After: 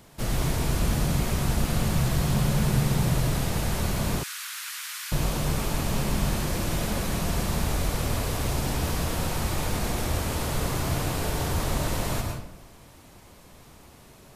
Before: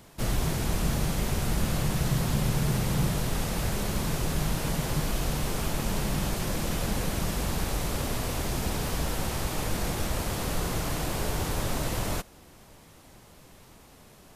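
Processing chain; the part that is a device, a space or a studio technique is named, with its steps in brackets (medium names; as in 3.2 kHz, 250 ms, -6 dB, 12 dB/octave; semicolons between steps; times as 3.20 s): bathroom (reverberation RT60 0.70 s, pre-delay 99 ms, DRR 2 dB); 4.23–5.12 s: steep high-pass 1.3 kHz 36 dB/octave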